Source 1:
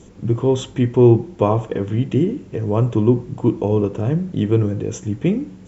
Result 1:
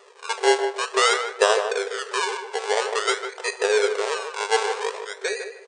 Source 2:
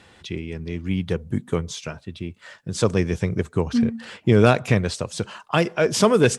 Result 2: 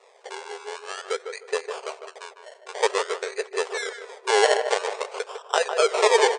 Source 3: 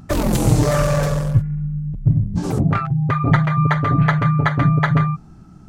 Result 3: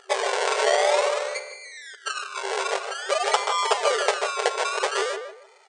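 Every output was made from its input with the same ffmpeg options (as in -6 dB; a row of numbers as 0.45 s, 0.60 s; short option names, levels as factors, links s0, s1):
-filter_complex "[0:a]acrusher=samples=28:mix=1:aa=0.000001:lfo=1:lforange=16.8:lforate=0.5,asplit=2[s0][s1];[s1]adelay=153,lowpass=f=1700:p=1,volume=0.473,asplit=2[s2][s3];[s3]adelay=153,lowpass=f=1700:p=1,volume=0.26,asplit=2[s4][s5];[s5]adelay=153,lowpass=f=1700:p=1,volume=0.26[s6];[s0][s2][s4][s6]amix=inputs=4:normalize=0,afftfilt=real='re*between(b*sr/4096,380,9400)':imag='im*between(b*sr/4096,380,9400)':win_size=4096:overlap=0.75"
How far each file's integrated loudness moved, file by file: -4.5 LU, -2.5 LU, -6.0 LU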